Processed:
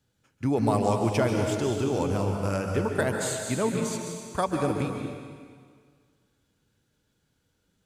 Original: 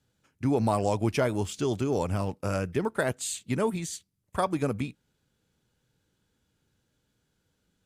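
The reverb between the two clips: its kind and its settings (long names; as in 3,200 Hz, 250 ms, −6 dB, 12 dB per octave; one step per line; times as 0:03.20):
dense smooth reverb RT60 1.8 s, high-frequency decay 0.95×, pre-delay 120 ms, DRR 2.5 dB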